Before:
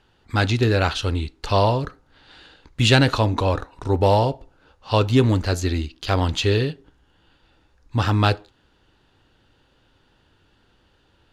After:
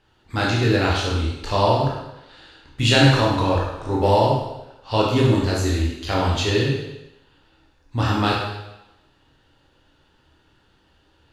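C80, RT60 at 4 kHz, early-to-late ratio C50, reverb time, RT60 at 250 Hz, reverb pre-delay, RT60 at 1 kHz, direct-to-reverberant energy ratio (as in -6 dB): 4.0 dB, 0.95 s, 1.0 dB, 0.90 s, 0.80 s, 15 ms, 0.95 s, -4.0 dB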